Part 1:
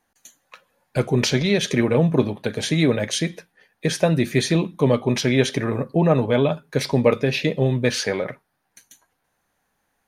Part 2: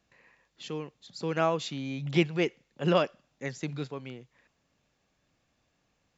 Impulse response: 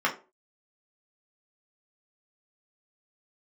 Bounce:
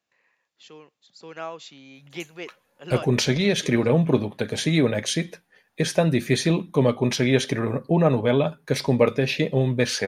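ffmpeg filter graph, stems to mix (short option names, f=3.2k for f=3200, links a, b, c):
-filter_complex "[0:a]adelay=1950,volume=-1.5dB[a];[1:a]highpass=f=520:p=1,volume=-5.5dB[b];[a][b]amix=inputs=2:normalize=0"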